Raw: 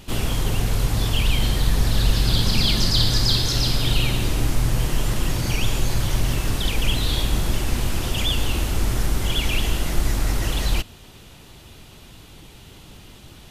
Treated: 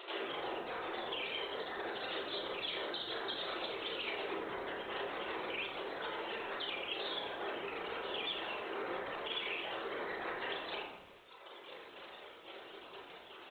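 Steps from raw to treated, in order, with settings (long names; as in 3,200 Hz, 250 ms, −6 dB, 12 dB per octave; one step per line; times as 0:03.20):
sub-octave generator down 1 octave, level +1 dB
tuned comb filter 990 Hz, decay 0.32 s, mix 40%
linear-prediction vocoder at 8 kHz whisper
mains-hum notches 60/120/180/240/300/360/420/480/540 Hz
brickwall limiter −15 dBFS, peak gain reduction 6.5 dB
reverb reduction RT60 1.9 s
linear-phase brick-wall high-pass 330 Hz
convolution reverb RT60 0.55 s, pre-delay 22 ms, DRR −3 dB
downward compressor 2.5 to 1, threshold −44 dBFS, peak gain reduction 12.5 dB
echo with shifted repeats 85 ms, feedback 48%, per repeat −110 Hz, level −11.5 dB
feedback echo at a low word length 83 ms, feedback 55%, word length 11 bits, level −13 dB
level +1.5 dB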